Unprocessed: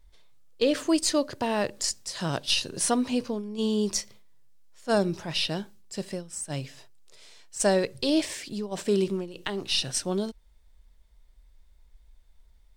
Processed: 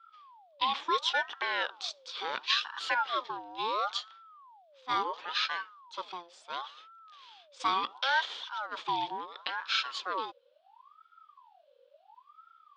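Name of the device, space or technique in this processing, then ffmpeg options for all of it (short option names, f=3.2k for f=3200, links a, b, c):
voice changer toy: -af "aeval=exprs='val(0)*sin(2*PI*930*n/s+930*0.45/0.72*sin(2*PI*0.72*n/s))':c=same,highpass=590,equalizer=f=670:t=q:w=4:g=-7,equalizer=f=2k:t=q:w=4:g=-4,equalizer=f=3.4k:t=q:w=4:g=9,lowpass=f=4.2k:w=0.5412,lowpass=f=4.2k:w=1.3066"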